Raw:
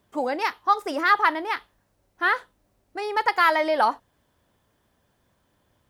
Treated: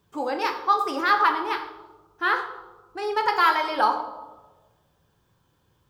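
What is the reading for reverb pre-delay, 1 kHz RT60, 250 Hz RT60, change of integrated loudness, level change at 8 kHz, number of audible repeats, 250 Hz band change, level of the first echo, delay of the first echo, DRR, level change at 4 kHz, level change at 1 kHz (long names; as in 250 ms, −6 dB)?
7 ms, 1.1 s, 1.5 s, −0.5 dB, can't be measured, no echo audible, −1.0 dB, no echo audible, no echo audible, 3.5 dB, +1.0 dB, +0.5 dB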